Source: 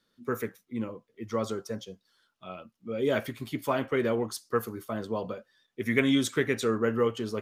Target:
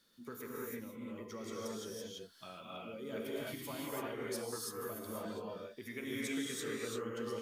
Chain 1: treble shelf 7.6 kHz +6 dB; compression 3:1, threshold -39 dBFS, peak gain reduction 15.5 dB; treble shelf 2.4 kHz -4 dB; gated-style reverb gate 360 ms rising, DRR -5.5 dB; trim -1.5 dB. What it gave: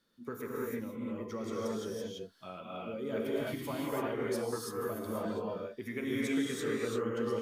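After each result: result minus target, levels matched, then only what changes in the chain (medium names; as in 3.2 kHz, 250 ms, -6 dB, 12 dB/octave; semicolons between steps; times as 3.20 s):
compression: peak gain reduction -7.5 dB; 4 kHz band -5.5 dB
change: compression 3:1, threshold -50 dBFS, peak gain reduction 22.5 dB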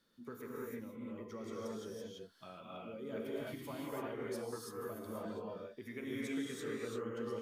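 4 kHz band -5.0 dB
change: second treble shelf 2.4 kHz +5.5 dB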